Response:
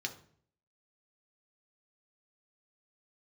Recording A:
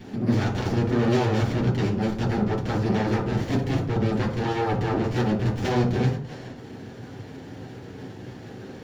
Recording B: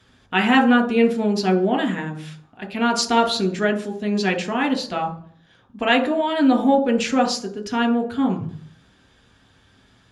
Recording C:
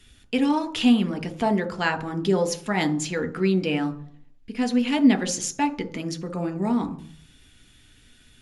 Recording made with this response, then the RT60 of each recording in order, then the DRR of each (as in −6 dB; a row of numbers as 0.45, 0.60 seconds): B; 0.55, 0.55, 0.55 seconds; −4.0, 3.5, 8.5 decibels